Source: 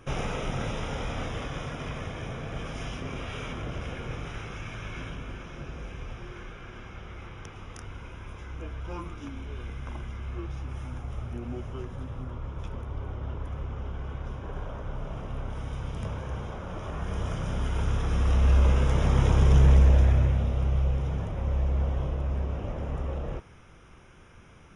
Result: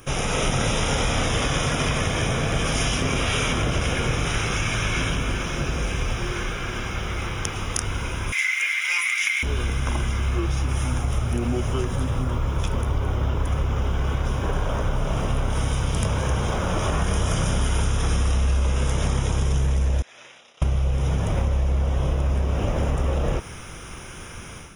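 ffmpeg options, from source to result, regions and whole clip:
-filter_complex "[0:a]asettb=1/sr,asplit=3[a][b][c];[a]atrim=end=8.324[d];[b]atrim=start=8.32:end=9.43,asetpts=PTS-STARTPTS,afade=t=in:d=0.004:c=qsin,afade=t=out:st=1.106:d=0.004:c=qsin,highpass=f=2.1k:t=q:w=11,highshelf=f=5.9k:g=8.5[e];[c]atrim=start=9.426[f];[d][e]acrossfade=d=0.004:c1=hsin:c2=qsin[g];[g][f]acrossfade=d=0.004:c1=qsin:c2=hsin,asettb=1/sr,asplit=3[h][i][j];[h]atrim=end=20.024[k];[i]atrim=start=20.02:end=20.62,asetpts=PTS-STARTPTS,afade=t=in:d=0.004:c=qsin,afade=t=out:st=0.596:d=0.004:c=qsin,agate=range=-33dB:threshold=-19dB:ratio=3:release=100:detection=peak,highpass=260,lowpass=3.7k,aderivative[l];[j]atrim=start=20.616[m];[k][l]acrossfade=d=0.004:c1=hsin:c2=qsin[n];[n][m]acrossfade=d=0.004:c1=qsin:c2=hsin,dynaudnorm=f=270:g=3:m=9.5dB,aemphasis=mode=production:type=75fm,acompressor=threshold=-23dB:ratio=10,volume=5dB"

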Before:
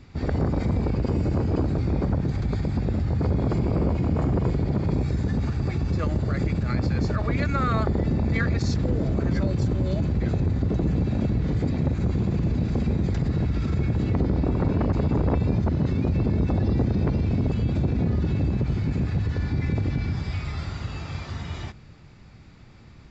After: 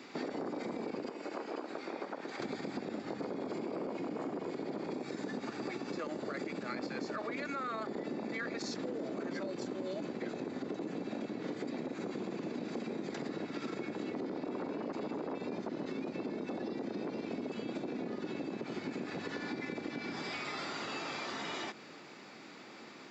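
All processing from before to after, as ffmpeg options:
-filter_complex "[0:a]asettb=1/sr,asplit=3[a][b][c];[a]atrim=end=1.094[d];[b]atrim=start=1.09:end=2.4,asetpts=PTS-STARTPTS,afade=t=in:d=0.004:c=qsin,afade=t=out:st=1.306:d=0.004:c=qsin,highpass=f=1.5k:p=1,highshelf=f=3.5k:g=-9[e];[c]atrim=start=2.396[f];[d][e]acrossfade=d=0.004:c1=hsin:c2=qsin[g];[g][f]acrossfade=d=0.004:c1=qsin:c2=hsin,highpass=f=270:w=0.5412,highpass=f=270:w=1.3066,alimiter=limit=-23.5dB:level=0:latency=1:release=13,acompressor=threshold=-42dB:ratio=6,volume=5.5dB"

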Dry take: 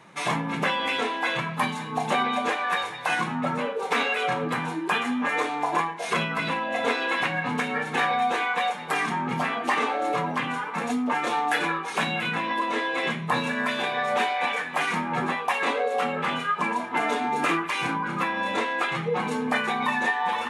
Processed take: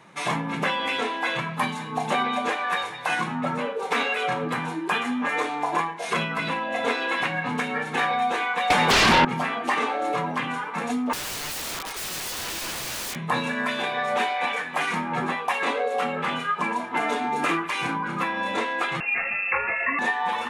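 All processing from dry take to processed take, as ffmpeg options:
-filter_complex "[0:a]asettb=1/sr,asplit=3[a][b][c];[a]atrim=end=8.704[d];[b]atrim=start=8.7:end=9.25,asetpts=PTS-STARTPTS,afade=t=in:d=0.004:c=qsin,afade=t=out:st=0.546:d=0.004:c=qsin,aeval=exprs='0.211*sin(PI/2*5.01*val(0)/0.211)':c=same,acrossover=split=5800[e][f];[f]acompressor=threshold=-34dB:ratio=4:attack=1:release=60[g];[e][g]amix=inputs=2:normalize=0[h];[c]atrim=start=9.246[i];[d][h]acrossfade=d=0.004:c1=hsin:c2=qsin[j];[j][i]acrossfade=d=0.004:c1=qsin:c2=hsin,asettb=1/sr,asplit=3[k][l][m];[k]atrim=end=11.134[n];[l]atrim=start=11.13:end=13.16,asetpts=PTS-STARTPTS,afade=t=in:d=0.004:c=qsin,afade=t=out:st=2.026:d=0.004:c=qsin,highpass=420,aeval=exprs='(mod(22.4*val(0)+1,2)-1)/22.4':c=same[o];[m]atrim=start=13.156[p];[n][o]acrossfade=d=0.004:c1=hsin:c2=qsin[q];[q][p]acrossfade=d=0.004:c1=qsin:c2=hsin,asettb=1/sr,asplit=3[r][s][t];[r]atrim=end=19.004[u];[s]atrim=start=19:end=19.99,asetpts=PTS-STARTPTS,afade=t=in:d=0.004:c=qsin,afade=t=out:st=0.986:d=0.004:c=qsin,lowpass=f=2.5k:t=q:w=0.5098,lowpass=f=2.5k:t=q:w=0.6013,lowpass=f=2.5k:t=q:w=0.9,lowpass=f=2.5k:t=q:w=2.563,afreqshift=-2900,equalizer=f=200:w=0.85:g=7[v];[t]atrim=start=19.986[w];[u][v]acrossfade=d=0.004:c1=hsin:c2=qsin[x];[x][w]acrossfade=d=0.004:c1=qsin:c2=hsin"

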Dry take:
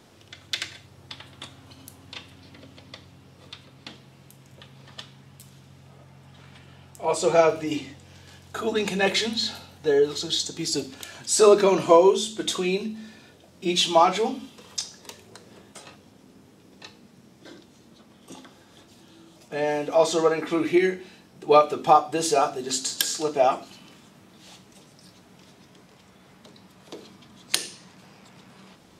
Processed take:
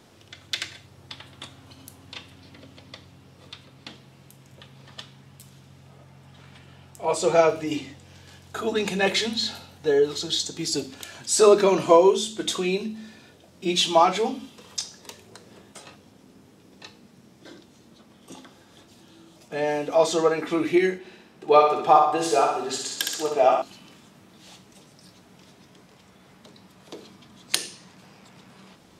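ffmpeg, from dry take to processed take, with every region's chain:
-filter_complex "[0:a]asettb=1/sr,asplit=3[a][b][c];[a]atrim=end=20.984[d];[b]atrim=start=20.98:end=23.62,asetpts=PTS-STARTPTS,afade=t=in:d=0.004:c=qsin,afade=t=out:st=2.636:d=0.004:c=qsin,bass=f=250:g=-6,treble=f=4k:g=-6,aecho=1:1:63|126|189|252|315|378:0.631|0.315|0.158|0.0789|0.0394|0.0197,atrim=end_sample=116424[e];[c]atrim=start=23.616[f];[d][e]acrossfade=d=0.004:c1=hsin:c2=qsin[g];[g][f]acrossfade=d=0.004:c1=qsin:c2=hsin"

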